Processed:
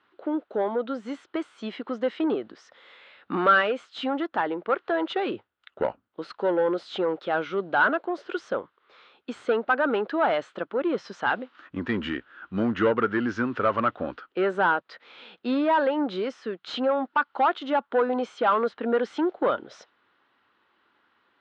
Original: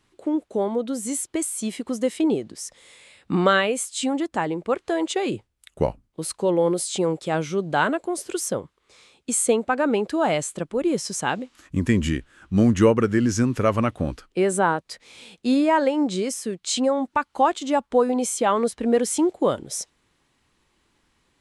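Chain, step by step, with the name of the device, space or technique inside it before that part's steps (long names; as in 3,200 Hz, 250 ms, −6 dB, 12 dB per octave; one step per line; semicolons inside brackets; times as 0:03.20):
overdrive pedal into a guitar cabinet (mid-hump overdrive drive 17 dB, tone 2,500 Hz, clips at −5.5 dBFS; loudspeaker in its box 110–3,700 Hz, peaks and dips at 150 Hz −9 dB, 1,400 Hz +8 dB, 2,300 Hz −5 dB)
level −7.5 dB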